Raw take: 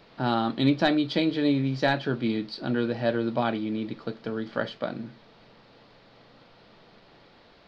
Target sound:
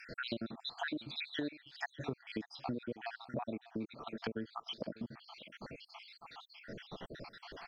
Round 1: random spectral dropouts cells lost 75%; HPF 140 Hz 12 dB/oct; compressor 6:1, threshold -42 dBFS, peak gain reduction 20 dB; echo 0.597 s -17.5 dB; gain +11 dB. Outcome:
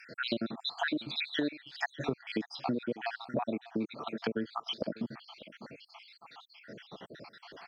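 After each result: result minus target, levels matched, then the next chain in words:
compressor: peak gain reduction -7 dB; 125 Hz band -4.5 dB
random spectral dropouts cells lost 75%; HPF 140 Hz 12 dB/oct; compressor 6:1, threshold -50 dBFS, peak gain reduction 26.5 dB; echo 0.597 s -17.5 dB; gain +11 dB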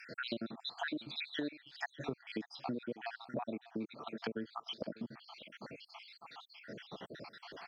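125 Hz band -3.0 dB
random spectral dropouts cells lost 75%; compressor 6:1, threshold -50 dBFS, peak gain reduction 27 dB; echo 0.597 s -17.5 dB; gain +11 dB

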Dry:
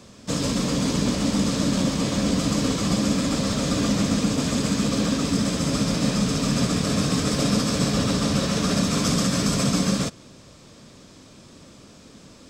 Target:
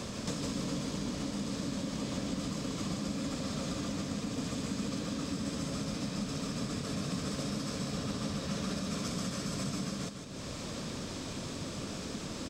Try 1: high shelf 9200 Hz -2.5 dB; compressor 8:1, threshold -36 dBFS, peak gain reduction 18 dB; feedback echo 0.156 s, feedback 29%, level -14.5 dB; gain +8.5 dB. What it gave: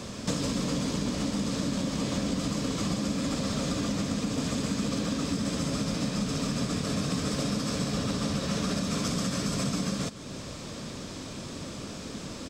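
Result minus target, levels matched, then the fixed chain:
compressor: peak gain reduction -7 dB; echo-to-direct -8 dB
high shelf 9200 Hz -2.5 dB; compressor 8:1, threshold -44 dBFS, peak gain reduction 25 dB; feedback echo 0.156 s, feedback 29%, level -6.5 dB; gain +8.5 dB

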